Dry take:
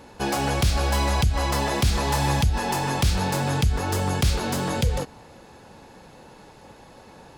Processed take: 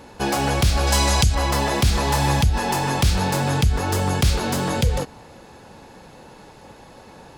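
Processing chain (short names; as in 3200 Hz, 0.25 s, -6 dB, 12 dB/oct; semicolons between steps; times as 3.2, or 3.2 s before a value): 0.87–1.35 bell 6900 Hz +9 dB 1.8 oct; gain +3 dB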